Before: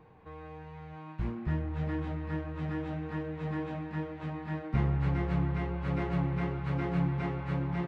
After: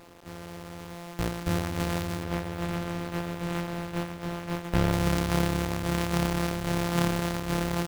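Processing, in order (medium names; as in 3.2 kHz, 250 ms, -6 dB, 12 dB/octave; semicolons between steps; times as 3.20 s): sorted samples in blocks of 256 samples; 2.23–4.92 s: low-pass 3.3 kHz 12 dB/octave; companded quantiser 4-bit; trim +3 dB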